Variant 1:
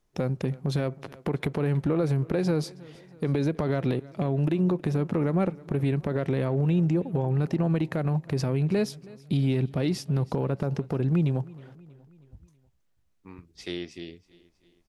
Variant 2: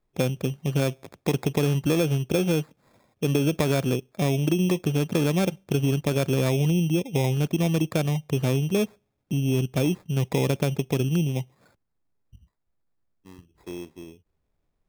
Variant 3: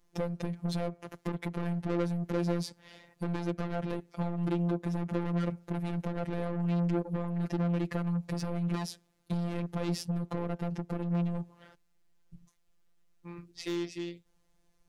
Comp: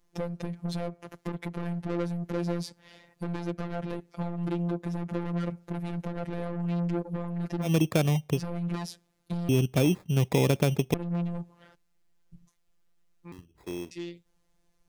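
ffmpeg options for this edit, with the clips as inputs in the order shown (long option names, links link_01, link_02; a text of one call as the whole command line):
ffmpeg -i take0.wav -i take1.wav -i take2.wav -filter_complex "[1:a]asplit=3[link_01][link_02][link_03];[2:a]asplit=4[link_04][link_05][link_06][link_07];[link_04]atrim=end=7.71[link_08];[link_01]atrim=start=7.61:end=8.42[link_09];[link_05]atrim=start=8.32:end=9.492[link_10];[link_02]atrim=start=9.488:end=10.942[link_11];[link_06]atrim=start=10.938:end=13.322[link_12];[link_03]atrim=start=13.318:end=13.912[link_13];[link_07]atrim=start=13.908[link_14];[link_08][link_09]acrossfade=duration=0.1:curve1=tri:curve2=tri[link_15];[link_15][link_10]acrossfade=duration=0.1:curve1=tri:curve2=tri[link_16];[link_16][link_11]acrossfade=duration=0.004:curve1=hsin:curve2=hsin[link_17];[link_17][link_12]acrossfade=duration=0.004:curve1=hsin:curve2=hsin[link_18];[link_18][link_13]acrossfade=duration=0.004:curve1=hsin:curve2=hsin[link_19];[link_19][link_14]acrossfade=duration=0.004:curve1=hsin:curve2=hsin" out.wav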